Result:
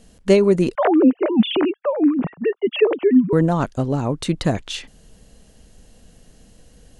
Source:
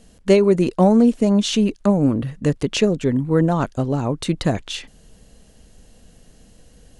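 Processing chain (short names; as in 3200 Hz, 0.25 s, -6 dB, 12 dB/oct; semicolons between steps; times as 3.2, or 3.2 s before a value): 0.75–3.33 sine-wave speech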